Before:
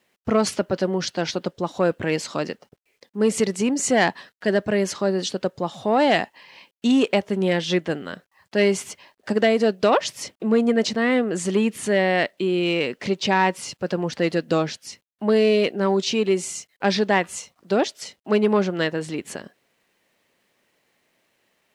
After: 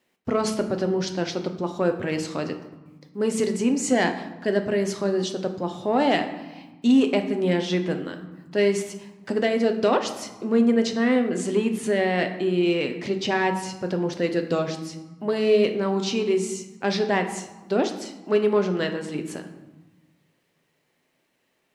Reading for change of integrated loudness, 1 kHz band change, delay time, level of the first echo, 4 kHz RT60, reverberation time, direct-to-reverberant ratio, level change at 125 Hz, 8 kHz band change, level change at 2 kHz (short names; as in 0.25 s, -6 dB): -2.0 dB, -3.5 dB, none, none, 0.70 s, 1.2 s, 5.5 dB, -1.5 dB, -4.5 dB, -4.0 dB